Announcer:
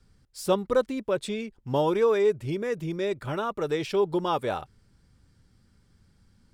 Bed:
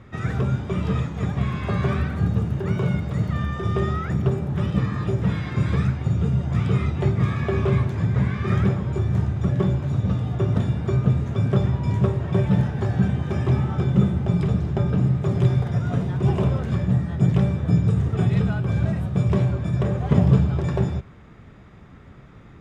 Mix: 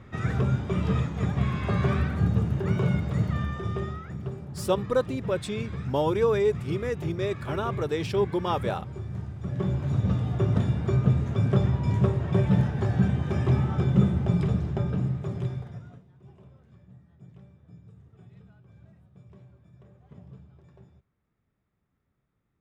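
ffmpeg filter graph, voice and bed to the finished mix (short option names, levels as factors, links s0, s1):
-filter_complex "[0:a]adelay=4200,volume=0.891[s0];[1:a]volume=2.66,afade=t=out:st=3.19:d=0.85:silence=0.281838,afade=t=in:st=9.41:d=0.51:silence=0.298538,afade=t=out:st=14.26:d=1.76:silence=0.0354813[s1];[s0][s1]amix=inputs=2:normalize=0"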